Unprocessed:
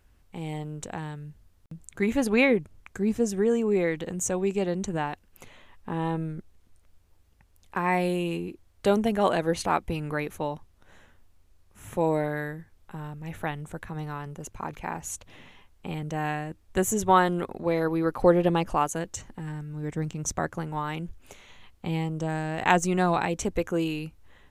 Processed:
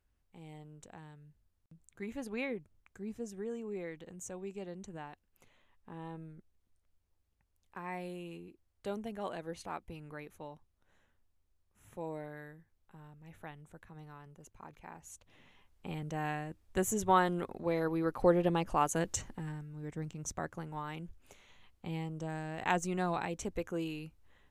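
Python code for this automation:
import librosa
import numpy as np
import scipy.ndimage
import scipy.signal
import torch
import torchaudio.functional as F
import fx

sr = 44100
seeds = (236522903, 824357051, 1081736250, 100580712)

y = fx.gain(x, sr, db=fx.line((15.06, -16.5), (15.88, -7.0), (18.68, -7.0), (19.13, 1.0), (19.71, -10.0)))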